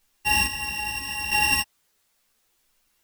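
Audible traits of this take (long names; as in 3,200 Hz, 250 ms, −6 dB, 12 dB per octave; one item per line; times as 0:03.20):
a buzz of ramps at a fixed pitch in blocks of 16 samples
chopped level 0.76 Hz, depth 65%, duty 35%
a quantiser's noise floor 12 bits, dither triangular
a shimmering, thickened sound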